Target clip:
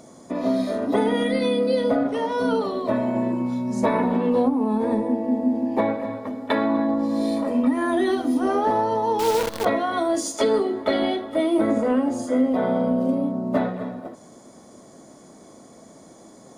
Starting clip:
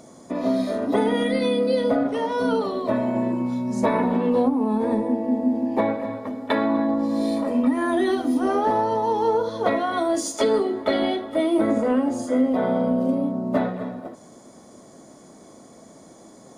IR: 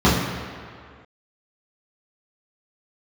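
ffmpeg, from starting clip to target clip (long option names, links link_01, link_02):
-filter_complex "[0:a]asettb=1/sr,asplit=3[link_01][link_02][link_03];[link_01]atrim=end=9.194[link_04];[link_02]atrim=start=9.19:end=9.65,asetpts=PTS-STARTPTS,afade=type=in:duration=0.004:curve=qsin,afade=type=out:start_time=0.456:duration=0.004:curve=qsin,acrusher=bits=5:dc=4:mix=0:aa=0.000001[link_05];[link_03]atrim=start=9.646[link_06];[link_04][link_05]acrossfade=duration=0.004:curve1=hsin:curve2=qsin[link_07];[link_07][link_06]acrossfade=duration=0.004:curve1=qsin:curve2=hsin"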